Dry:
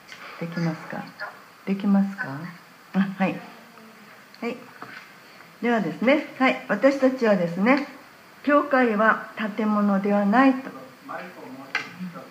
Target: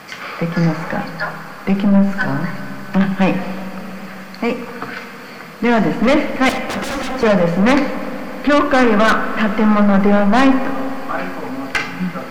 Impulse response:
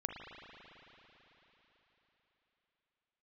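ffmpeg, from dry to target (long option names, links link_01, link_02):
-filter_complex "[0:a]aeval=exprs='(tanh(12.6*val(0)+0.25)-tanh(0.25))/12.6':channel_layout=same,asettb=1/sr,asplit=3[link_01][link_02][link_03];[link_01]atrim=end=6.494[link_04];[link_02]atrim=start=6.49:end=7.23,asetpts=PTS-STARTPTS,afade=type=in:duration=0.004:curve=qsin,afade=type=out:start_time=0.736:duration=0.004:curve=qsin,aeval=exprs='0.0299*(abs(mod(val(0)/0.0299+3,4)-2)-1)':channel_layout=same[link_05];[link_03]atrim=start=7.226[link_06];[link_04][link_05]acrossfade=duration=0.004:curve1=hsin:curve2=qsin[link_07];[link_07][link_06]acrossfade=duration=0.004:curve1=qsin:curve2=hsin,asplit=2[link_08][link_09];[1:a]atrim=start_sample=2205,highshelf=frequency=3600:gain=-12[link_10];[link_09][link_10]afir=irnorm=-1:irlink=0,volume=-2.5dB[link_11];[link_08][link_11]amix=inputs=2:normalize=0,volume=9dB"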